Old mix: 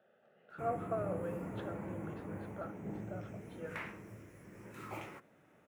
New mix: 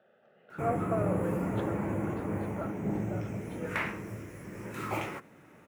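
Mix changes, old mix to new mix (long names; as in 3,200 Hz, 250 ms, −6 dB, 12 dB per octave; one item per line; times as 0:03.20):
speech +4.5 dB
background +11.0 dB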